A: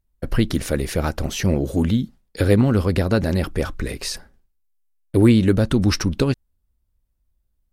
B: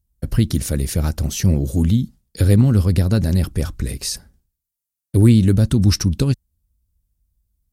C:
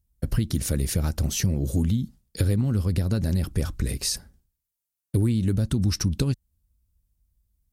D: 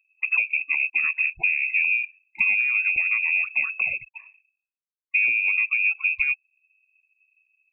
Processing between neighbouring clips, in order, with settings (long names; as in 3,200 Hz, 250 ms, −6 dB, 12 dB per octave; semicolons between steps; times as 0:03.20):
high-pass filter 43 Hz; bass and treble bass +13 dB, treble +13 dB; level −6.5 dB
downward compressor 6 to 1, threshold −18 dBFS, peak gain reduction 11 dB; level −1.5 dB
spectral peaks only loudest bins 64; voice inversion scrambler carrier 2,600 Hz; AAC 128 kbit/s 48,000 Hz